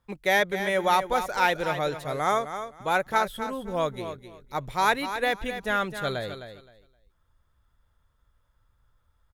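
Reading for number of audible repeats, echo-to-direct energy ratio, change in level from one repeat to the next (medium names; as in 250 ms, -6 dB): 2, -10.0 dB, -14.0 dB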